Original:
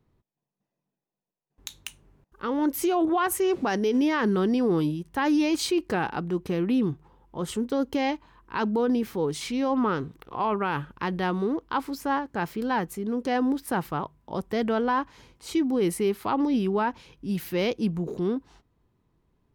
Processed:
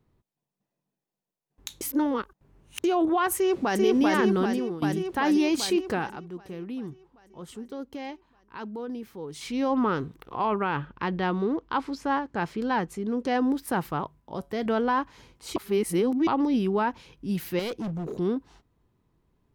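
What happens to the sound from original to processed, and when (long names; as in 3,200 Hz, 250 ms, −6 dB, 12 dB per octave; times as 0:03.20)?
0:01.81–0:02.84: reverse
0:03.36–0:03.81: delay throw 390 ms, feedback 75%, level −1 dB
0:04.34–0:04.82: fade out, to −17 dB
0:05.88–0:09.62: duck −11 dB, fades 0.33 s
0:10.64–0:13.50: low-pass filter 4,000 Hz → 9,800 Hz
0:14.20–0:14.66: tuned comb filter 140 Hz, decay 0.25 s, mix 40%
0:15.56–0:16.27: reverse
0:17.59–0:18.13: gain into a clipping stage and back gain 29 dB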